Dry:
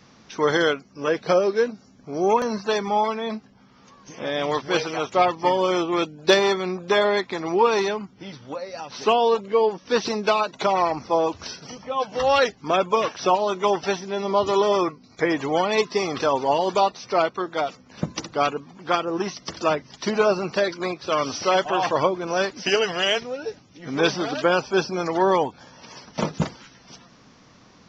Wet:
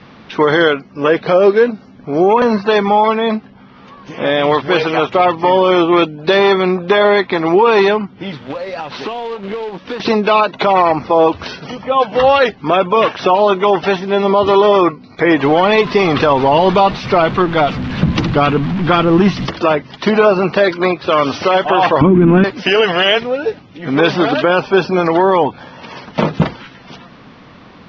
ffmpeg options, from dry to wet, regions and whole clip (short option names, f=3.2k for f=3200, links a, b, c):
-filter_complex "[0:a]asettb=1/sr,asplit=3[a][b][c];[a]atrim=end=8.314[d];[b]atrim=start=8.31:end=10,asetpts=PTS-STARTPTS,afade=t=in:d=0.004:c=qsin,afade=t=out:st=1.686:d=0.004:c=qsin,acompressor=threshold=-32dB:ratio=16:attack=3.2:release=140:knee=1:detection=peak,acrusher=bits=2:mode=log:mix=0:aa=0.000001[e];[c]atrim=start=9.996[f];[d][e]acrossfade=d=0.004:c1=hsin:c2=qsin[g];[g][f]acrossfade=d=0.004:c1=qsin:c2=hsin,asettb=1/sr,asplit=3[h][i][j];[h]atrim=end=15.434[k];[i]atrim=start=15.43:end=19.47,asetpts=PTS-STARTPTS,afade=t=in:d=0.004:c=qsin,afade=t=out:st=4.036:d=0.004:c=qsin,aeval=exprs='val(0)+0.5*0.0211*sgn(val(0))':c=same,asubboost=boost=5:cutoff=230,acrusher=bits=6:mode=log:mix=0:aa=0.000001[l];[j]atrim=start=19.466[m];[k][l]acrossfade=d=0.004:c1=hsin:c2=qsin[n];[n][m]acrossfade=d=0.004:c1=qsin:c2=hsin,asettb=1/sr,asplit=3[o][p][q];[o]atrim=end=22.014[r];[p]atrim=start=22.01:end=22.44,asetpts=PTS-STARTPTS,afade=t=in:d=0.004:c=qsin,afade=t=out:st=0.426:d=0.004:c=qsin,aeval=exprs='val(0)+0.5*0.0188*sgn(val(0))':c=same,lowpass=f=2.7k:w=0.5412,lowpass=f=2.7k:w=1.3066,lowshelf=f=380:t=q:w=3:g=13.5[s];[q]atrim=start=22.436[t];[r][s]acrossfade=d=0.004:c1=hsin:c2=qsin[u];[u][t]acrossfade=d=0.004:c1=qsin:c2=hsin,lowpass=f=3.7k:w=0.5412,lowpass=f=3.7k:w=1.3066,bandreject=f=60:t=h:w=6,bandreject=f=120:t=h:w=6,alimiter=level_in=14dB:limit=-1dB:release=50:level=0:latency=1,volume=-1dB"